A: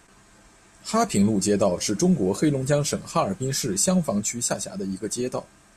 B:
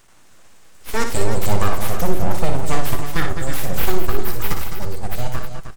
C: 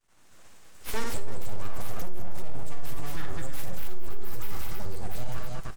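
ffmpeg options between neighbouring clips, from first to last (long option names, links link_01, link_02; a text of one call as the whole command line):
ffmpeg -i in.wav -af "aeval=exprs='abs(val(0))':channel_layout=same,aecho=1:1:59|99|204|210|313:0.473|0.141|0.211|0.251|0.335,asubboost=boost=2:cutoff=190,volume=2dB" out.wav
ffmpeg -i in.wav -af "agate=range=-33dB:threshold=-41dB:ratio=3:detection=peak,acontrast=63,aeval=exprs='(tanh(1.58*val(0)+0.35)-tanh(0.35))/1.58':channel_layout=same,volume=-6.5dB" out.wav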